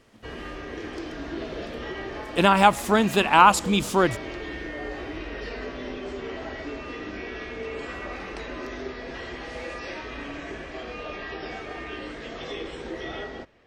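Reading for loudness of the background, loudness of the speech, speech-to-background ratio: −35.5 LKFS, −19.5 LKFS, 16.0 dB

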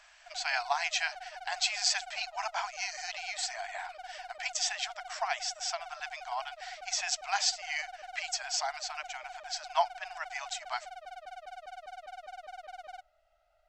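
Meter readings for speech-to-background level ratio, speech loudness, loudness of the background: 12.5 dB, −34.0 LKFS, −46.5 LKFS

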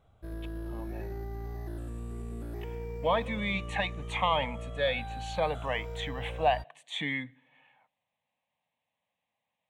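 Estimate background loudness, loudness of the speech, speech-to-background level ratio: −40.5 LKFS, −32.0 LKFS, 8.5 dB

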